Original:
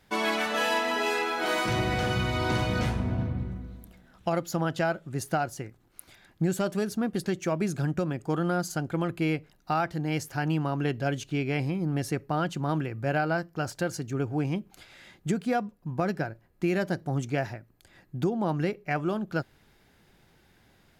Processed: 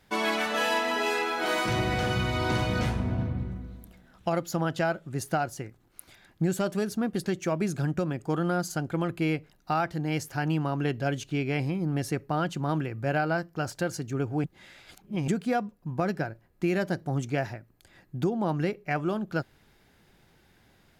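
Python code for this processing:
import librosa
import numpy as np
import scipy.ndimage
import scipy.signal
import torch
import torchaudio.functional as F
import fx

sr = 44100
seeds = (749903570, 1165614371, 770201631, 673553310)

y = fx.edit(x, sr, fx.reverse_span(start_s=14.44, length_s=0.84), tone=tone)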